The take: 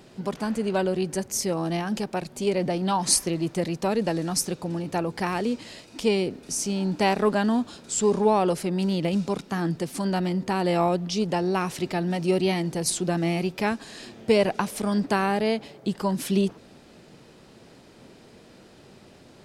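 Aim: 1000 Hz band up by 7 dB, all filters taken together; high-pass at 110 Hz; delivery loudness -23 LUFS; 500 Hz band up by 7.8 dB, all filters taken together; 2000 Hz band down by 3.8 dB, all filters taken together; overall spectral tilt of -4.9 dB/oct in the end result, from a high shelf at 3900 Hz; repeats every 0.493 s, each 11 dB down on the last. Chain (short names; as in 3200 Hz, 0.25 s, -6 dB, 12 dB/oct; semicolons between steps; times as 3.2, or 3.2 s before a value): HPF 110 Hz; bell 500 Hz +9 dB; bell 1000 Hz +7 dB; bell 2000 Hz -6 dB; high shelf 3900 Hz -9 dB; feedback echo 0.493 s, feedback 28%, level -11 dB; gain -2.5 dB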